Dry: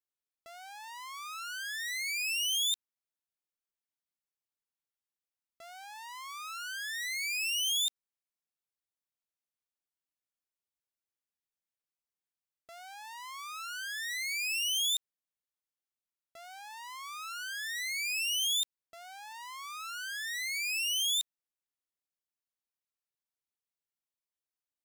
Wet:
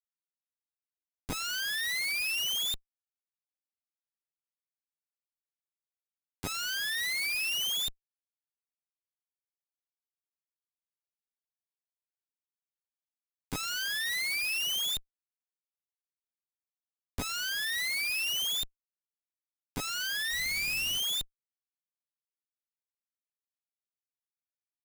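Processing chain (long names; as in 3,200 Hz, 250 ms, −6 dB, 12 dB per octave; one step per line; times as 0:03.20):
0:20.28–0:20.98: hum removal 93.26 Hz, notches 32
comparator with hysteresis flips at −37.5 dBFS
level +8 dB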